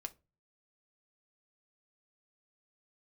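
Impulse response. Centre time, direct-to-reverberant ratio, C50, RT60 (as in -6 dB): 3 ms, 6.5 dB, 21.5 dB, not exponential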